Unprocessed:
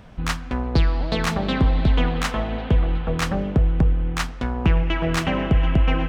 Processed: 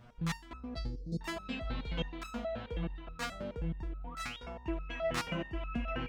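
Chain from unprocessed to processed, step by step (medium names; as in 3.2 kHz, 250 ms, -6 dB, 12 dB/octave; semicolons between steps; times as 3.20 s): 0.78–1.21 s: elliptic band-stop 410–5800 Hz, stop band 40 dB; 3.90–4.38 s: painted sound rise 430–3900 Hz -37 dBFS; resonator arpeggio 9.4 Hz 120–1300 Hz; trim +1 dB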